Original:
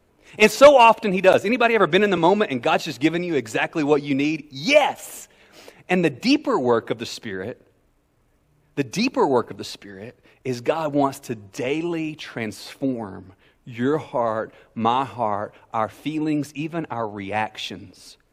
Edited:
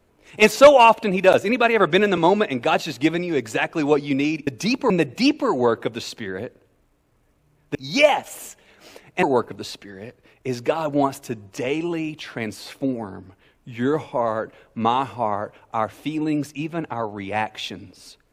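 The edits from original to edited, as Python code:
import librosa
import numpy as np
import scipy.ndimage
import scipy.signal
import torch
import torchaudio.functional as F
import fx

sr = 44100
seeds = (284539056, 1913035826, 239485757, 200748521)

y = fx.edit(x, sr, fx.swap(start_s=4.47, length_s=1.48, other_s=8.8, other_length_s=0.43), tone=tone)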